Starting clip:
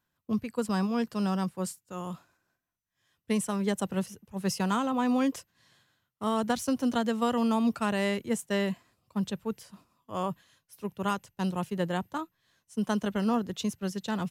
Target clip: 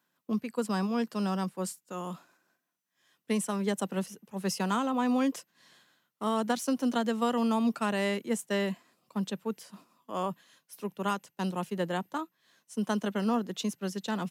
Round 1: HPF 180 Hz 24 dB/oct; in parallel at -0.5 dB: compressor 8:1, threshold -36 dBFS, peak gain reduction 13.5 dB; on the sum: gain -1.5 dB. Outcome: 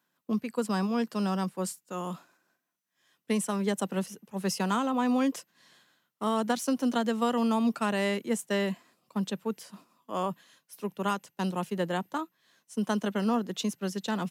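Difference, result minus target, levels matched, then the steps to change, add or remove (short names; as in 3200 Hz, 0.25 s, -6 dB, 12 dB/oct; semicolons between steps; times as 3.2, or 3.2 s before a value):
compressor: peak gain reduction -7.5 dB
change: compressor 8:1, threshold -44.5 dBFS, peak gain reduction 21 dB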